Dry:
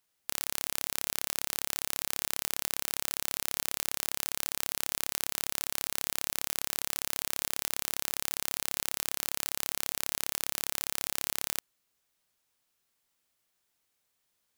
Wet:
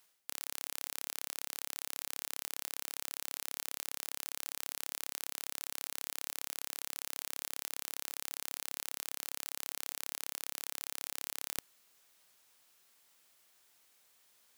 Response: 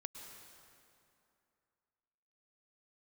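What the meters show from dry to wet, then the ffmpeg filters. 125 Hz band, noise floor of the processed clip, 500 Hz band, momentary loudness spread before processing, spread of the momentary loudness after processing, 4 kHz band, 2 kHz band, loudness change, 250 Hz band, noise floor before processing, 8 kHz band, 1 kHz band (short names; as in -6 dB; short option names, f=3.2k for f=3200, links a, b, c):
-16.5 dB, -84 dBFS, -9.5 dB, 0 LU, 0 LU, -7.5 dB, -7.5 dB, -7.5 dB, -12.0 dB, -78 dBFS, -7.5 dB, -8.0 dB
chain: -af "lowshelf=f=220:g=-11,areverse,acompressor=threshold=-42dB:ratio=16,areverse,volume=10dB"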